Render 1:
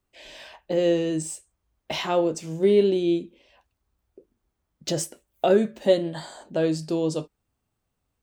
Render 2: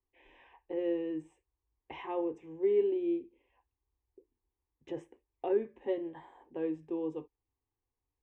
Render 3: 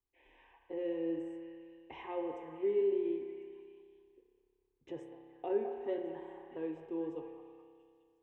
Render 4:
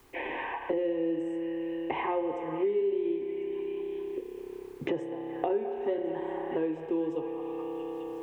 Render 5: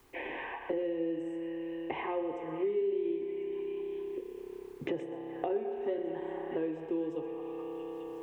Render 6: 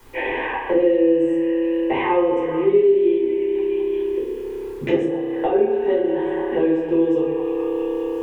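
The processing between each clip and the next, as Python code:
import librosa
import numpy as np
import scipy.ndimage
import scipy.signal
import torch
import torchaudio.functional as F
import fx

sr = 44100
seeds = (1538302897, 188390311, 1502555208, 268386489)

y1 = scipy.signal.sosfilt(scipy.signal.butter(2, 1700.0, 'lowpass', fs=sr, output='sos'), x)
y1 = fx.fixed_phaser(y1, sr, hz=930.0, stages=8)
y1 = y1 * librosa.db_to_amplitude(-8.5)
y2 = fx.echo_stepped(y1, sr, ms=210, hz=870.0, octaves=0.7, feedback_pct=70, wet_db=-6)
y2 = fx.rev_spring(y2, sr, rt60_s=2.2, pass_ms=(30,), chirp_ms=75, drr_db=3.5)
y2 = y2 * librosa.db_to_amplitude(-4.5)
y3 = fx.band_squash(y2, sr, depth_pct=100)
y3 = y3 * librosa.db_to_amplitude(7.5)
y4 = fx.dynamic_eq(y3, sr, hz=950.0, q=3.4, threshold_db=-48.0, ratio=4.0, max_db=-4)
y4 = y4 + 10.0 ** (-15.5 / 20.0) * np.pad(y4, (int(125 * sr / 1000.0), 0))[:len(y4)]
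y4 = y4 * librosa.db_to_amplitude(-3.5)
y5 = fx.room_shoebox(y4, sr, seeds[0], volume_m3=320.0, walls='furnished', distance_m=4.7)
y5 = y5 * librosa.db_to_amplitude(6.5)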